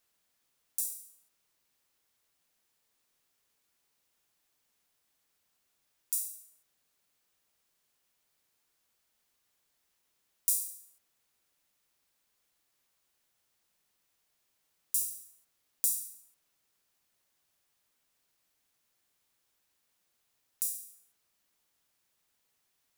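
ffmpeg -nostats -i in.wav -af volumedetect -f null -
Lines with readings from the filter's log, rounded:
mean_volume: -44.7 dB
max_volume: -3.3 dB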